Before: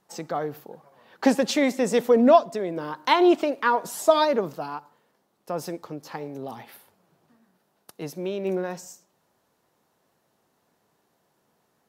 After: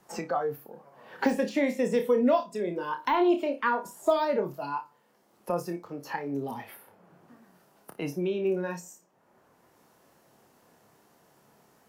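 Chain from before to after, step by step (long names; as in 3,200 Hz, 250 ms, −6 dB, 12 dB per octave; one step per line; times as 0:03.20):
de-essing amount 80%
parametric band 3,800 Hz −4.5 dB 0.39 octaves
flutter between parallel walls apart 4.9 metres, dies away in 0.24 s
noise reduction from a noise print of the clip's start 10 dB
multiband upward and downward compressor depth 70%
level −4 dB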